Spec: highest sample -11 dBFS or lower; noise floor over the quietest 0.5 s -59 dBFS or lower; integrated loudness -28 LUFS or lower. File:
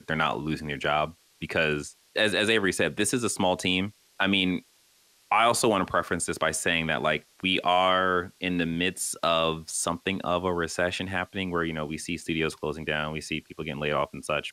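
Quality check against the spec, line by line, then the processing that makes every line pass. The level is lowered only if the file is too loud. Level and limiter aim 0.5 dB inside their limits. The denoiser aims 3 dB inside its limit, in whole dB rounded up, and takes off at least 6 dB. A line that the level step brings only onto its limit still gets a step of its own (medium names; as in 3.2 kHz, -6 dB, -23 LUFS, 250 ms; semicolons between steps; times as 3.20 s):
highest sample -9.0 dBFS: fail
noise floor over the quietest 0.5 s -62 dBFS: pass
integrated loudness -26.5 LUFS: fail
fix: trim -2 dB; peak limiter -11.5 dBFS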